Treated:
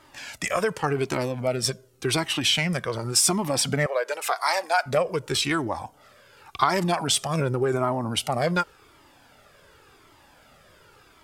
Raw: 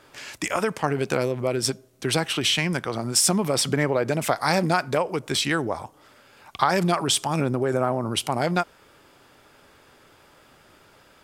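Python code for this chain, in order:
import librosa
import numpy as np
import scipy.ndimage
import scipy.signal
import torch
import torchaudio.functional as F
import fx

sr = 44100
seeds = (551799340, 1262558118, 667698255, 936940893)

y = fx.highpass(x, sr, hz=540.0, slope=24, at=(3.86, 4.86))
y = fx.comb_cascade(y, sr, direction='falling', hz=0.89)
y = y * 10.0 ** (4.0 / 20.0)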